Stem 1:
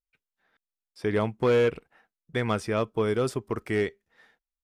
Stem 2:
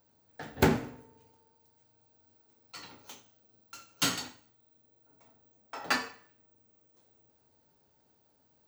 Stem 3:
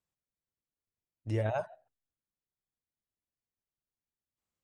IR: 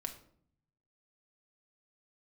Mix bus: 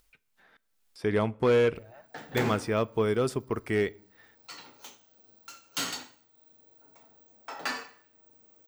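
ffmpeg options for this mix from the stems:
-filter_complex "[0:a]volume=-2dB,asplit=2[a][b];[b]volume=-13dB[c];[1:a]highpass=f=280:p=1,alimiter=limit=-21dB:level=0:latency=1:release=93,adelay=1750,volume=1.5dB[d];[2:a]alimiter=level_in=5.5dB:limit=-24dB:level=0:latency=1,volume=-5.5dB,adelay=400,volume=-14.5dB[e];[3:a]atrim=start_sample=2205[f];[c][f]afir=irnorm=-1:irlink=0[g];[a][d][e][g]amix=inputs=4:normalize=0,acompressor=mode=upward:threshold=-51dB:ratio=2.5"

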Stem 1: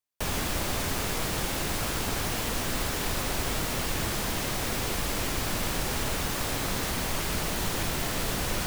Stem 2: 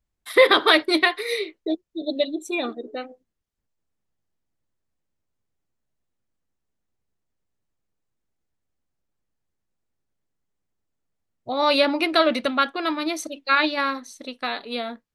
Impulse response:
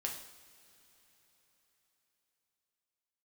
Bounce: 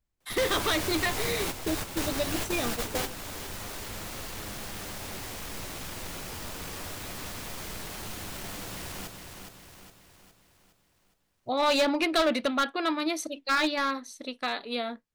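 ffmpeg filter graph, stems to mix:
-filter_complex "[0:a]aeval=exprs='0.158*sin(PI/2*3.55*val(0)/0.158)':c=same,flanger=delay=9.2:depth=2.4:regen=67:speed=0.27:shape=triangular,volume=-5.5dB,asplit=2[a][b];[b]volume=-10.5dB[c];[1:a]asoftclip=type=hard:threshold=-16.5dB,volume=-2dB,asplit=2[d][e];[e]apad=whole_len=381931[f];[a][f]sidechaingate=range=-43dB:threshold=-35dB:ratio=16:detection=peak[g];[c]aecho=0:1:413|826|1239|1652|2065|2478|2891:1|0.5|0.25|0.125|0.0625|0.0312|0.0156[h];[g][d][h]amix=inputs=3:normalize=0,alimiter=limit=-19.5dB:level=0:latency=1:release=296"

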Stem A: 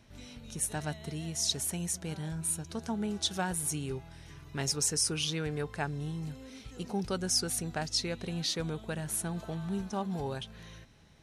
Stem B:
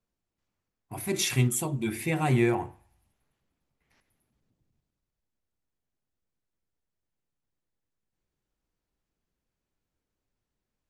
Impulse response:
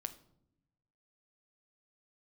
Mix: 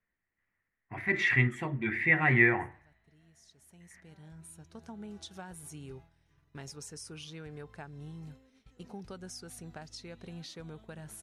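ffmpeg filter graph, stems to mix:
-filter_complex "[0:a]agate=range=-33dB:threshold=-39dB:ratio=3:detection=peak,equalizer=f=1.3k:t=o:w=2.7:g=5,acompressor=threshold=-34dB:ratio=2.5,adelay=2000,volume=-12dB[a];[1:a]lowpass=f=1.9k:t=q:w=10,tiltshelf=f=1.1k:g=-4.5,volume=-4.5dB,asplit=2[b][c];[c]apad=whole_len=583197[d];[a][d]sidechaincompress=threshold=-44dB:ratio=12:attack=21:release=1460[e];[e][b]amix=inputs=2:normalize=0,lowshelf=f=480:g=5.5"

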